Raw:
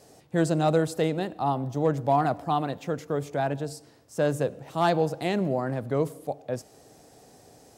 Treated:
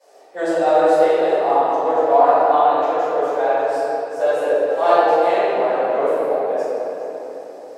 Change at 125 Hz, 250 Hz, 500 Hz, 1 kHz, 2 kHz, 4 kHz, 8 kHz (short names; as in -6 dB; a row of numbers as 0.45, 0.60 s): under -15 dB, +0.5 dB, +12.0 dB, +12.5 dB, +9.0 dB, +4.0 dB, n/a